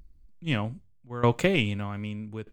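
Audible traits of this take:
tremolo saw down 0.81 Hz, depth 85%

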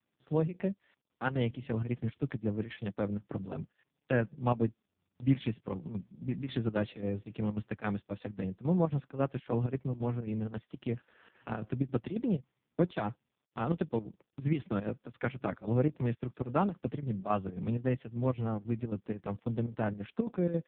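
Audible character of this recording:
chopped level 3.7 Hz, depth 65%, duty 75%
AMR narrowband

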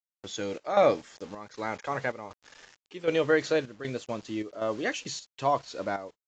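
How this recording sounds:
a quantiser's noise floor 8 bits, dither none
chopped level 1.3 Hz, depth 65%, duty 75%
AAC

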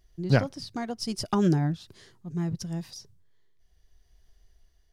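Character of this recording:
tremolo triangle 0.76 Hz, depth 45%

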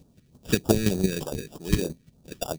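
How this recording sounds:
chopped level 5.8 Hz, depth 65%, duty 15%
aliases and images of a low sample rate 2,100 Hz, jitter 0%
phaser sweep stages 2, 3.3 Hz, lowest notch 780–2,000 Hz

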